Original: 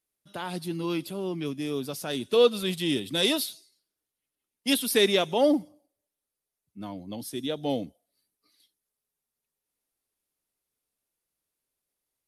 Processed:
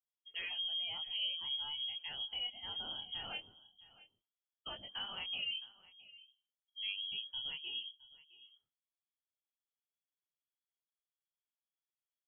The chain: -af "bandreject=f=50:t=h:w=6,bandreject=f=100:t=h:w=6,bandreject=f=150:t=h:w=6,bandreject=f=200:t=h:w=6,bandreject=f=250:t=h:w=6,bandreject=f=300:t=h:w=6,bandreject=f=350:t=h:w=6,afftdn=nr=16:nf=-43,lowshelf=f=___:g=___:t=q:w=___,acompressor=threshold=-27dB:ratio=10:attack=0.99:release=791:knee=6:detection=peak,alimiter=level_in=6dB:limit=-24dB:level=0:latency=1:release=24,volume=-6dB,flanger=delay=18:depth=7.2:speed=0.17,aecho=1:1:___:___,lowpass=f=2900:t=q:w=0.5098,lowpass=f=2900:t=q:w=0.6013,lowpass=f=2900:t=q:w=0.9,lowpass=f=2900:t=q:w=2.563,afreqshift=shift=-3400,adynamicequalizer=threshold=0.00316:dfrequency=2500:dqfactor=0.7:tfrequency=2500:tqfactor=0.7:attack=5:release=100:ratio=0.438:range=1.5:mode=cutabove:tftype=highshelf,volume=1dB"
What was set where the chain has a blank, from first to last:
180, 8, 3, 664, 0.0944